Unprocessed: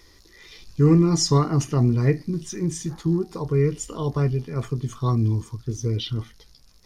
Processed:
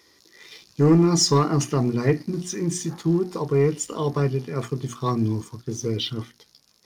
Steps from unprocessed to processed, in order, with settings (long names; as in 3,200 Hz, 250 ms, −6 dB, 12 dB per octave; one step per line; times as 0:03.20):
high-pass filter 170 Hz 12 dB per octave
mains-hum notches 60/120/180/240/300/360 Hz
leveller curve on the samples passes 1